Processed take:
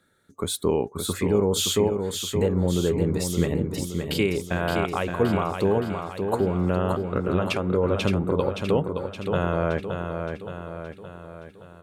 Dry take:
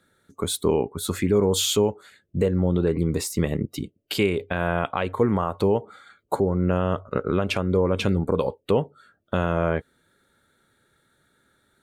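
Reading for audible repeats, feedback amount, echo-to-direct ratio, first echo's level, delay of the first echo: 6, 53%, -4.5 dB, -6.0 dB, 570 ms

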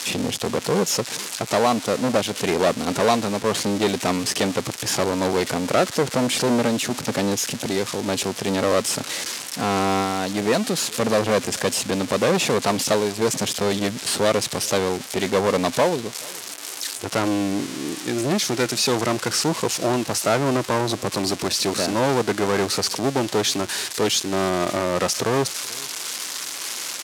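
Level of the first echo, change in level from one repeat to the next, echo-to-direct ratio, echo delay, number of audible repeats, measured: -24.0 dB, no regular repeats, -24.0 dB, 432 ms, 1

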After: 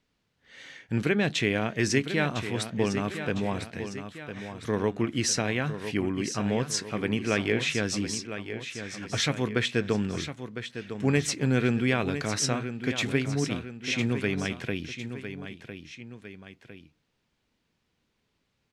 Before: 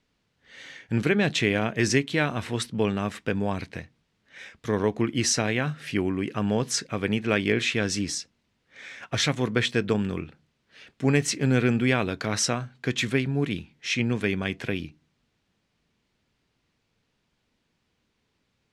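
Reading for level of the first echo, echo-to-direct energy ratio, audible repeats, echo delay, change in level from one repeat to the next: -10.0 dB, -9.0 dB, 2, 1005 ms, -6.0 dB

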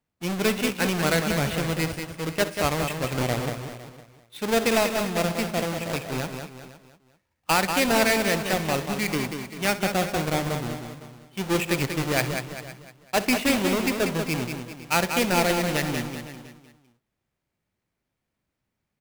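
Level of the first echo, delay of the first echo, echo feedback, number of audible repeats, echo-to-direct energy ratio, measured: -15.5 dB, 63 ms, no regular repeats, 7, -5.0 dB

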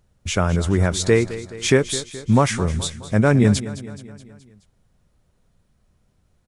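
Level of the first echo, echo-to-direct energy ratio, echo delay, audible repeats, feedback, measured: -15.0 dB, -13.5 dB, 212 ms, 4, 55%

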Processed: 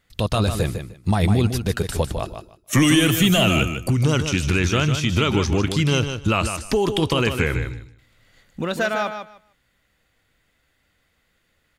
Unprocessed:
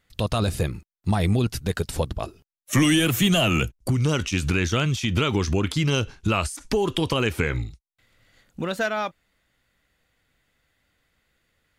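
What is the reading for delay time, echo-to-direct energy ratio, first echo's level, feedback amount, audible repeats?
152 ms, -8.0 dB, -8.0 dB, 18%, 2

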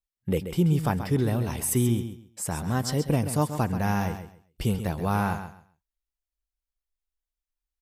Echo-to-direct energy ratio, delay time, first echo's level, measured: -10.0 dB, 133 ms, -10.0 dB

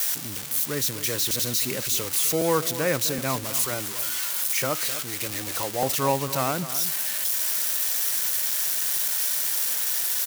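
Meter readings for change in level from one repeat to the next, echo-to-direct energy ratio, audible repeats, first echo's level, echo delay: -16.0 dB, -13.0 dB, 2, -13.0 dB, 256 ms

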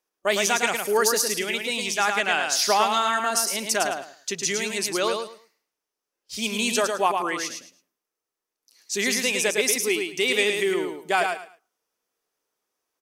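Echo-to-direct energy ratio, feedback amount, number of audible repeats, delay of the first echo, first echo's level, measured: -5.0 dB, 22%, 3, 108 ms, -5.0 dB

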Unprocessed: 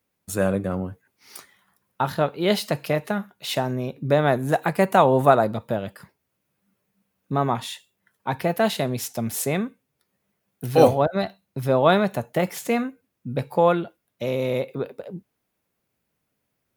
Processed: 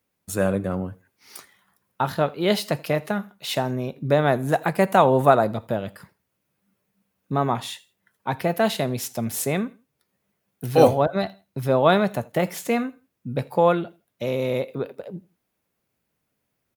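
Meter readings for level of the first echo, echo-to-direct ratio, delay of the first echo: -24.0 dB, -23.5 dB, 82 ms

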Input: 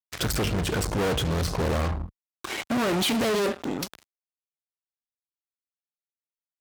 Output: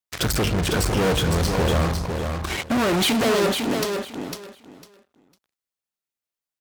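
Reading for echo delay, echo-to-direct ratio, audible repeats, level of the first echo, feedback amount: 502 ms, -5.5 dB, 3, -5.5 dB, 20%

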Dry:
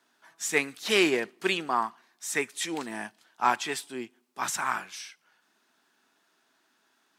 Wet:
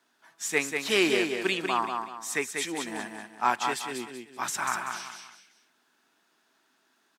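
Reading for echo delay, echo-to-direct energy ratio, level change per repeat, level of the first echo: 191 ms, -4.5 dB, -9.5 dB, -5.0 dB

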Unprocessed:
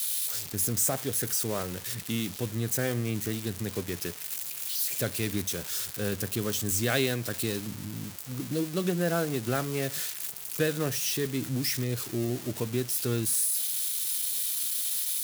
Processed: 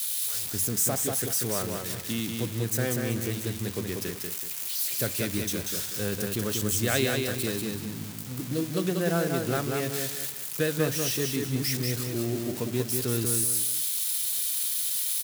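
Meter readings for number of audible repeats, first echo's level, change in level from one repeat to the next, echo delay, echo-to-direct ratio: 3, -4.0 dB, -10.0 dB, 189 ms, -3.5 dB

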